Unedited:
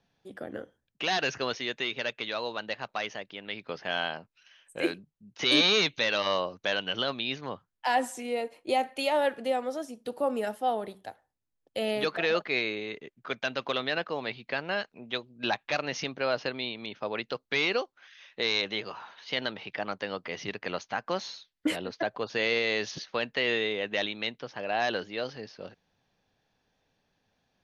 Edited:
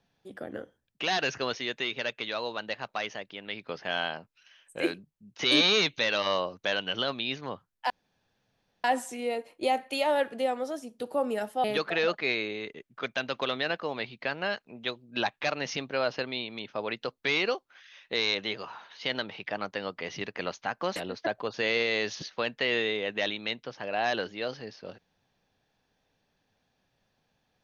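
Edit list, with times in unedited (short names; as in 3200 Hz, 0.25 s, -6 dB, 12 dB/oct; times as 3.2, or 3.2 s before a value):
7.9 insert room tone 0.94 s
10.7–11.91 cut
21.23–21.72 cut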